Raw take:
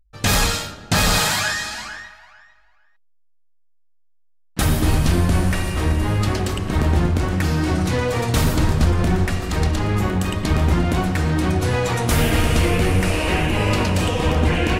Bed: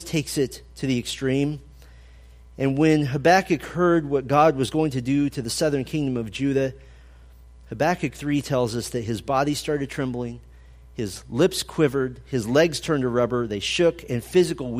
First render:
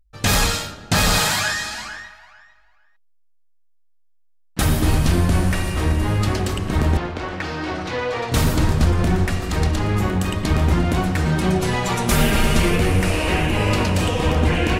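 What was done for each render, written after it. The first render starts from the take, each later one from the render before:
0:06.97–0:08.32: three-way crossover with the lows and the highs turned down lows −13 dB, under 350 Hz, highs −23 dB, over 5,400 Hz
0:11.25–0:12.76: comb filter 5.1 ms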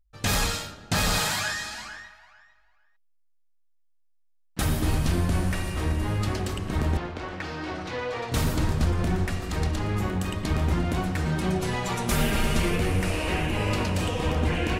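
level −7 dB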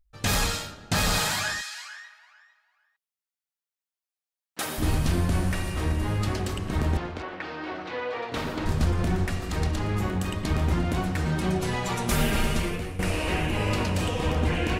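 0:01.60–0:04.77: high-pass filter 1,500 Hz → 380 Hz
0:07.22–0:08.66: three-way crossover with the lows and the highs turned down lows −14 dB, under 220 Hz, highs −16 dB, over 4,400 Hz
0:12.41–0:12.99: fade out, to −14 dB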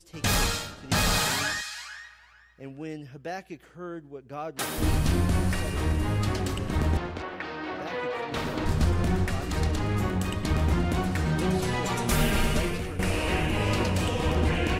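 mix in bed −19 dB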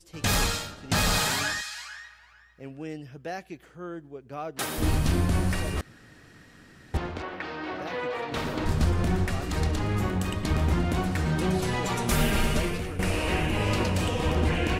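0:05.81–0:06.94: fill with room tone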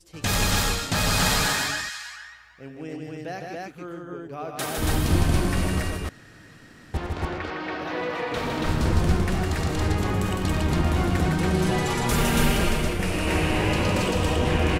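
loudspeakers that aren't time-aligned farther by 32 metres −10 dB, 54 metres −4 dB, 96 metres −1 dB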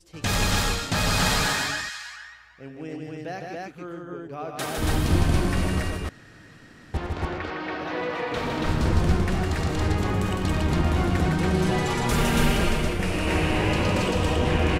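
high-shelf EQ 9,200 Hz −7 dB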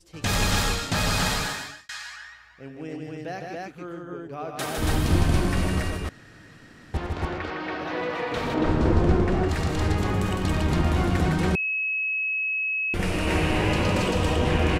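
0:00.76–0:01.89: fade out equal-power
0:08.54–0:09.49: drawn EQ curve 190 Hz 0 dB, 330 Hz +7 dB, 7,800 Hz −9 dB, 14,000 Hz −20 dB
0:11.55–0:12.94: beep over 2,570 Hz −23.5 dBFS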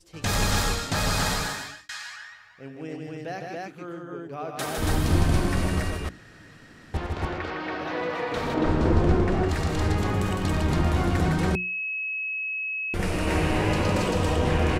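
mains-hum notches 60/120/180/240/300/360 Hz
dynamic equaliser 2,800 Hz, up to −4 dB, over −38 dBFS, Q 1.7

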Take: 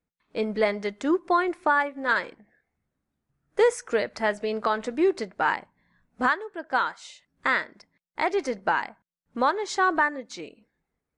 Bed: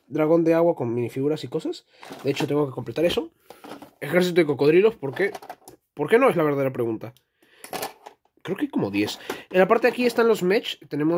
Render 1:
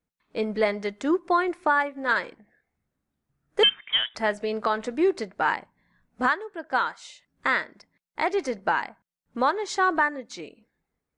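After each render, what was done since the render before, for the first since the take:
0:03.63–0:04.15: voice inversion scrambler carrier 3,600 Hz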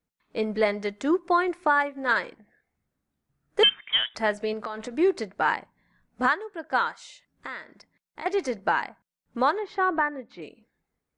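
0:04.53–0:04.96: downward compressor, threshold −29 dBFS
0:07.01–0:08.26: downward compressor 2 to 1, threshold −42 dBFS
0:09.59–0:10.42: high-frequency loss of the air 390 metres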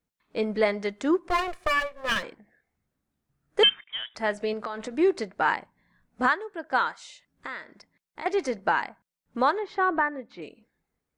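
0:01.29–0:02.23: lower of the sound and its delayed copy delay 1.7 ms
0:03.84–0:04.40: fade in, from −19.5 dB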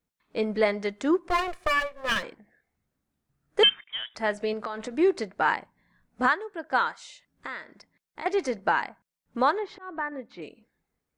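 0:09.40–0:10.12: volume swells 491 ms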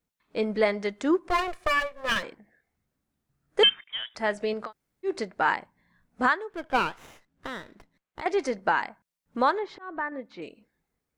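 0:04.68–0:05.08: fill with room tone, crossfade 0.10 s
0:06.50–0:08.21: windowed peak hold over 9 samples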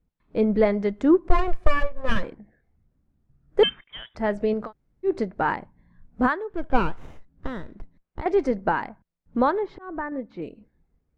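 spectral tilt −4 dB per octave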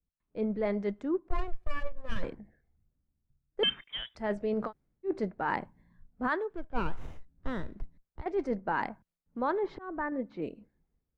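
reversed playback
downward compressor 5 to 1, threshold −29 dBFS, peak gain reduction 18.5 dB
reversed playback
multiband upward and downward expander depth 40%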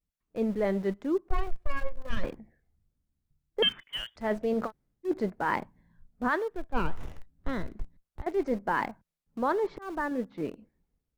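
in parallel at −9 dB: centre clipping without the shift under −38 dBFS
on the sum: pitch vibrato 0.95 Hz 84 cents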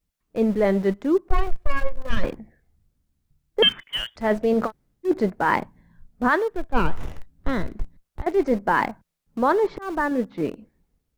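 level +8 dB

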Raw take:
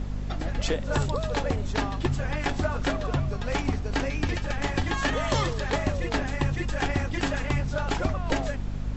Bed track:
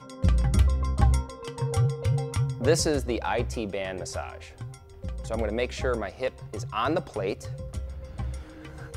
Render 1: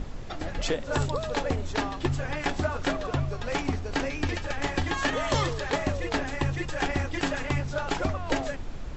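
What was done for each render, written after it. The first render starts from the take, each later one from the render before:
mains-hum notches 50/100/150/200/250 Hz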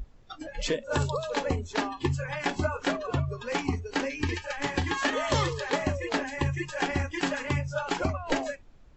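noise reduction from a noise print 19 dB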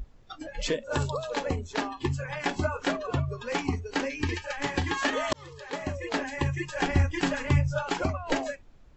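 0:00.88–0:02.44: amplitude modulation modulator 130 Hz, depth 15%
0:05.33–0:06.25: fade in
0:06.76–0:07.82: low-shelf EQ 140 Hz +11.5 dB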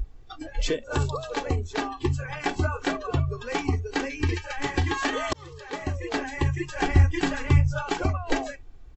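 low-shelf EQ 150 Hz +6.5 dB
comb filter 2.6 ms, depth 45%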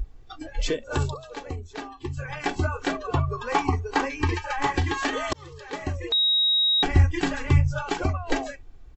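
0:01.14–0:02.17: clip gain −7.5 dB
0:03.14–0:04.73: parametric band 1,000 Hz +12 dB 0.89 octaves
0:06.12–0:06.83: beep over 3,800 Hz −18 dBFS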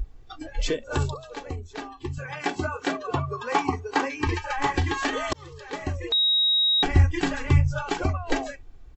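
0:02.18–0:04.27: high-pass filter 130 Hz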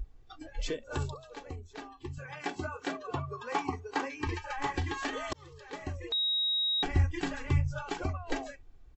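level −8.5 dB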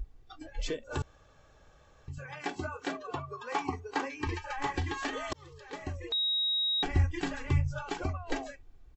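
0:01.02–0:02.08: fill with room tone
0:03.07–0:03.61: low-shelf EQ 210 Hz −8 dB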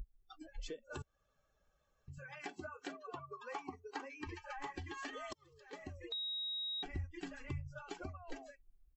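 spectral dynamics exaggerated over time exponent 1.5
downward compressor 2.5 to 1, threshold −46 dBFS, peak gain reduction 16 dB

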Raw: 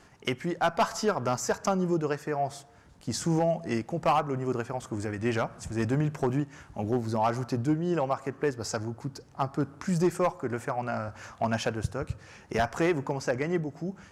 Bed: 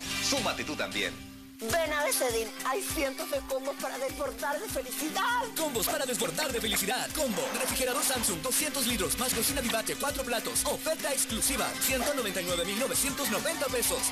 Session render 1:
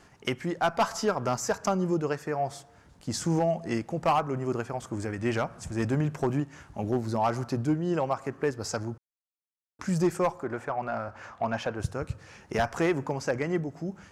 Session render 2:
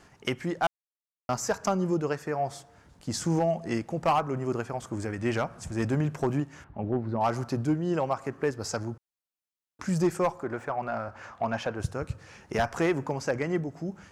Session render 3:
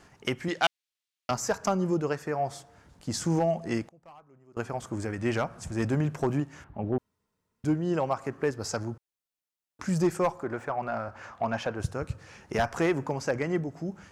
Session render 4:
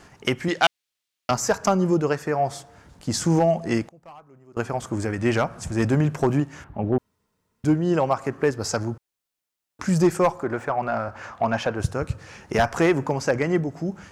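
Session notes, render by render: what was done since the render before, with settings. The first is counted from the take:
0:08.98–0:09.79: silence; 0:10.43–0:11.80: mid-hump overdrive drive 9 dB, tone 1,300 Hz, clips at −17.5 dBFS
0:00.67–0:01.29: silence; 0:06.64–0:07.21: high-frequency loss of the air 480 metres; 0:10.53–0:10.99: running median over 3 samples
0:00.48–0:01.31: meter weighting curve D; 0:03.83–0:04.57: gate with flip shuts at −34 dBFS, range −27 dB; 0:06.98–0:07.64: fill with room tone
level +6.5 dB; brickwall limiter −3 dBFS, peak gain reduction 1 dB

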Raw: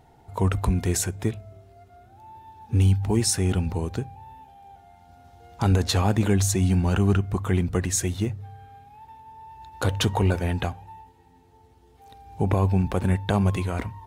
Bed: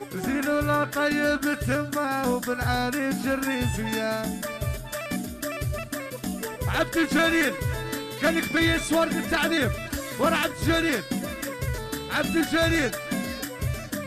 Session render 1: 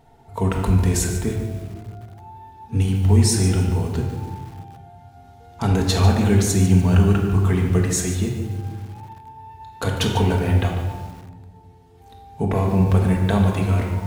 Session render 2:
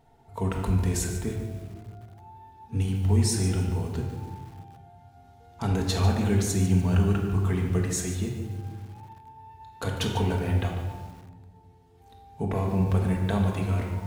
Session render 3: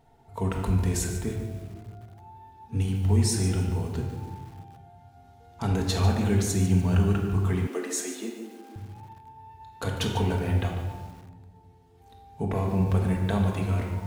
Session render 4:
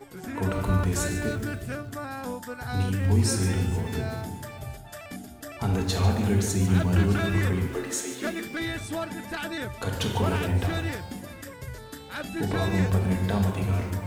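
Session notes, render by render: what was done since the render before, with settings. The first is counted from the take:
rectangular room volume 1,100 cubic metres, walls mixed, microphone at 1.6 metres; feedback echo at a low word length 146 ms, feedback 35%, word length 6 bits, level −12 dB
level −7 dB
0:07.67–0:08.76: Butterworth high-pass 220 Hz 96 dB per octave
mix in bed −9.5 dB

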